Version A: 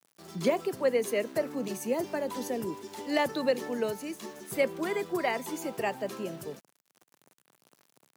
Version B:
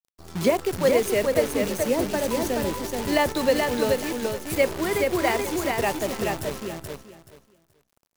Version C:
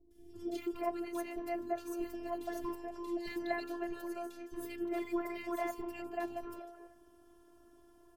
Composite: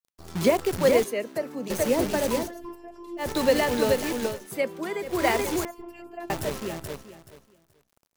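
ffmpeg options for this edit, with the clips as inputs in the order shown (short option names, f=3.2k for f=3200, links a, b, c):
-filter_complex "[0:a]asplit=2[a][b];[2:a]asplit=2[c][d];[1:a]asplit=5[e][f][g][h][i];[e]atrim=end=1.042[j];[a]atrim=start=1.038:end=1.702[k];[f]atrim=start=1.698:end=2.52[l];[c]atrim=start=2.36:end=3.33[m];[g]atrim=start=3.17:end=4.48[n];[b]atrim=start=4.24:end=5.25[o];[h]atrim=start=5.01:end=5.652[p];[d]atrim=start=5.648:end=6.302[q];[i]atrim=start=6.298[r];[j][k]acrossfade=d=0.004:c1=hsin:c2=hsin[s];[s][l]acrossfade=d=0.004:c1=hsin:c2=hsin[t];[t][m]acrossfade=d=0.16:c1=tri:c2=tri[u];[u][n]acrossfade=d=0.16:c1=tri:c2=tri[v];[v][o]acrossfade=d=0.24:c1=tri:c2=tri[w];[w][p]acrossfade=d=0.24:c1=tri:c2=tri[x];[x][q]acrossfade=d=0.004:c1=hsin:c2=hsin[y];[y][r]acrossfade=d=0.004:c1=hsin:c2=hsin"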